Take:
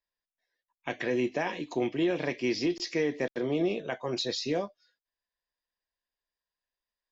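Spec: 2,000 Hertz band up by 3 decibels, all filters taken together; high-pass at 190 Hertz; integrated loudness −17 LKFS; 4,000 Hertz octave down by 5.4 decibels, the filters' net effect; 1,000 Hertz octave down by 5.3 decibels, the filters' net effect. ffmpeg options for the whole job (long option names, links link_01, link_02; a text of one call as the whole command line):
ffmpeg -i in.wav -af "highpass=190,equalizer=frequency=1000:width_type=o:gain=-9,equalizer=frequency=2000:width_type=o:gain=8,equalizer=frequency=4000:width_type=o:gain=-8.5,volume=15dB" out.wav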